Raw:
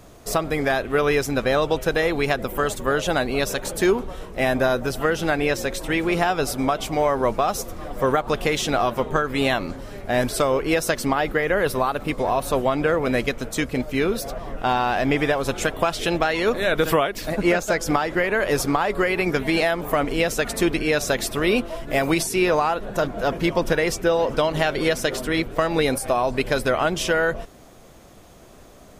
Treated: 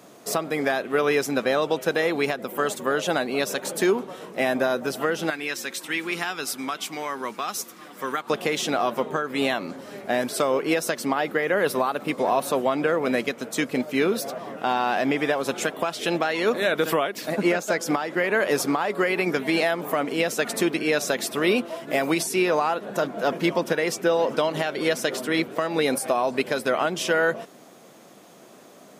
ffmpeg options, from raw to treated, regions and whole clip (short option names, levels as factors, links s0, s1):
-filter_complex "[0:a]asettb=1/sr,asplit=3[s0][s1][s2];[s0]atrim=end=5.304[s3];[s1]atrim=start=5.3:end=8.3,asetpts=PTS-STARTPTS,afade=t=in:d=0.004:c=qsin,afade=t=out:st=2.996:d=0.004:c=qsin,highpass=f=440:p=1,equalizer=f=610:w=1.2:g=-14[s4];[s2]atrim=start=8.296[s5];[s3][s4]acrossfade=d=0.004:c1=hsin:c2=qsin[s6];[s6][s5]acrossfade=d=0.004:c1=qsin:c2=hsin,highpass=f=170:w=0.5412,highpass=f=170:w=1.3066,alimiter=limit=0.299:level=0:latency=1:release=418"